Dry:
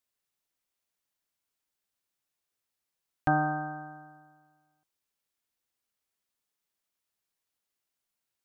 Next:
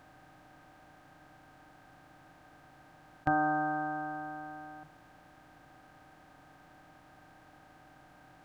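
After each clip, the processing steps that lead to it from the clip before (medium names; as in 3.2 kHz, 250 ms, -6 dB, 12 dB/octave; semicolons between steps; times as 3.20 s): spectral levelling over time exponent 0.4; hum notches 50/100/150 Hz; trim -3.5 dB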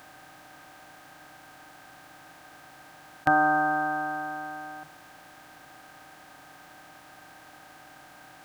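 tilt EQ +2.5 dB/octave; trim +8 dB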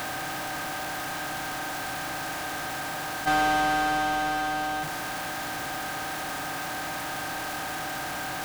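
power-law waveshaper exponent 0.35; trim -9 dB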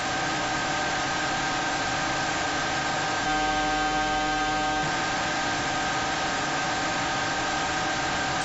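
waveshaping leveller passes 5; trim -8 dB; AAC 24 kbps 24 kHz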